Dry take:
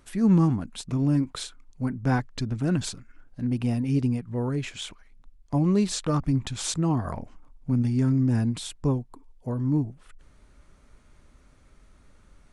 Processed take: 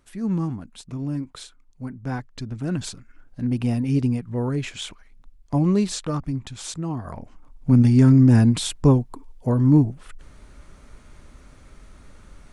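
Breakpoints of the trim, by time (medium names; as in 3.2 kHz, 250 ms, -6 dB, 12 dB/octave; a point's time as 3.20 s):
2.14 s -5 dB
3.40 s +3 dB
5.69 s +3 dB
6.41 s -4 dB
7.04 s -4 dB
7.74 s +9 dB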